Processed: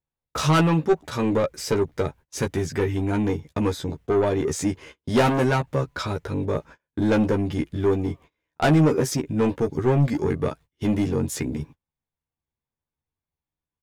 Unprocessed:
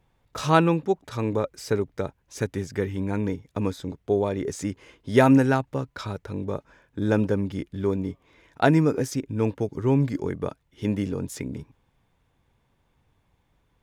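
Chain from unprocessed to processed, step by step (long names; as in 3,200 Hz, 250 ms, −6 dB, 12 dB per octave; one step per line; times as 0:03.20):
noise gate −47 dBFS, range −31 dB
soft clipping −21.5 dBFS, distortion −8 dB
double-tracking delay 13 ms −4 dB
level +5.5 dB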